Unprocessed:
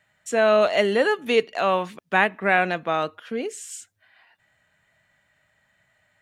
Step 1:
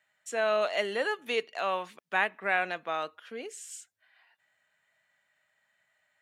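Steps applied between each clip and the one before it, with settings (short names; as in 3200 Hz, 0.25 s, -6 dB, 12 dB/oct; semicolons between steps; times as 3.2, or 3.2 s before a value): HPF 640 Hz 6 dB/oct; gain -6.5 dB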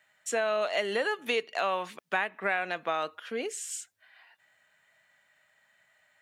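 compressor 5:1, threshold -32 dBFS, peak gain reduction 10.5 dB; gain +6.5 dB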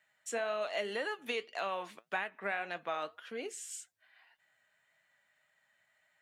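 flange 1.8 Hz, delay 5.3 ms, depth 4.8 ms, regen +68%; gain -2.5 dB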